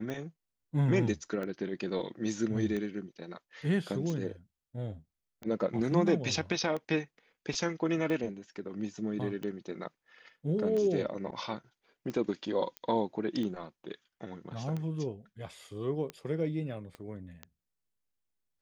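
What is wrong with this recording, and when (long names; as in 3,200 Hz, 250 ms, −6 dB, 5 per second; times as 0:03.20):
scratch tick 45 rpm −25 dBFS
0:12.77: click −24 dBFS
0:16.95: click −31 dBFS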